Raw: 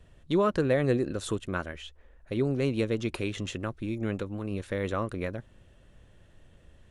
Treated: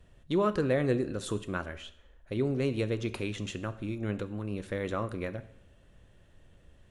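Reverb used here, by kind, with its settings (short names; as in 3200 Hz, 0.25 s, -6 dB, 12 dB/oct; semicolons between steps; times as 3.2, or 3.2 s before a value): plate-style reverb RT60 0.74 s, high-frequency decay 0.9×, DRR 11.5 dB; gain -2.5 dB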